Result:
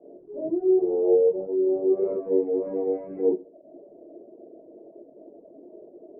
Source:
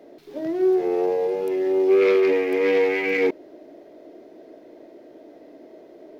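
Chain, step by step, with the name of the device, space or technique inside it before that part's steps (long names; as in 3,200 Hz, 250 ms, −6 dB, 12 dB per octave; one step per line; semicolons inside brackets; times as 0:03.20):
next room (low-pass filter 600 Hz 24 dB per octave; convolution reverb RT60 0.45 s, pre-delay 3 ms, DRR −7.5 dB)
low-shelf EQ 360 Hz −5.5 dB
reverb reduction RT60 0.68 s
high-shelf EQ 4,400 Hz +5.5 dB
level −5.5 dB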